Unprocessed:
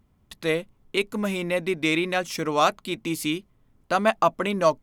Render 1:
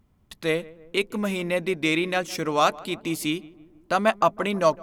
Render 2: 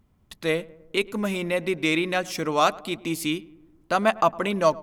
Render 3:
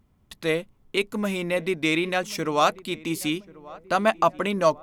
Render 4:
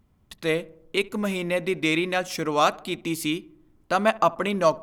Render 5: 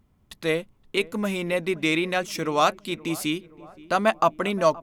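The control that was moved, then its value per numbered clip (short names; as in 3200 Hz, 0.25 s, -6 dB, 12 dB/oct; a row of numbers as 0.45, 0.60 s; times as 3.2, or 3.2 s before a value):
darkening echo, time: 159, 105, 1086, 69, 522 ms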